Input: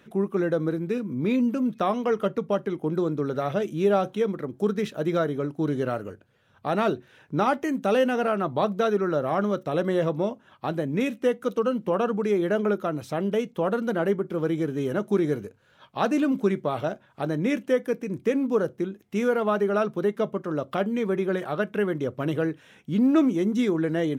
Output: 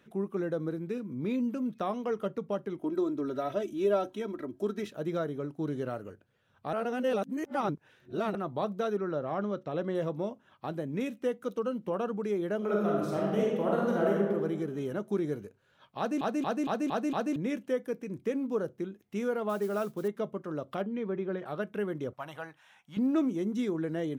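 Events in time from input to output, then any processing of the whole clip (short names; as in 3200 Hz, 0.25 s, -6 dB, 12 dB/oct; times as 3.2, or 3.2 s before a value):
2.79–4.87 comb 3.1 ms, depth 81%
6.73–8.35 reverse
8.97–9.95 LPF 4900 Hz
12.57–14.21 reverb throw, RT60 1.4 s, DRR -4 dB
15.98 stutter in place 0.23 s, 6 plays
19.49–20.08 modulation noise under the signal 24 dB
20.82–21.46 air absorption 190 m
22.13–22.97 resonant low shelf 570 Hz -12 dB, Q 3
whole clip: dynamic EQ 2200 Hz, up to -3 dB, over -37 dBFS, Q 0.77; gain -7.5 dB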